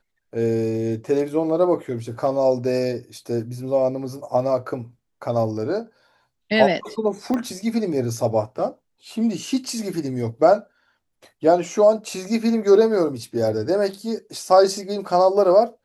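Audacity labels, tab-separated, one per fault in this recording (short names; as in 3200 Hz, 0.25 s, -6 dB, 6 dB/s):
7.340000	7.340000	pop -14 dBFS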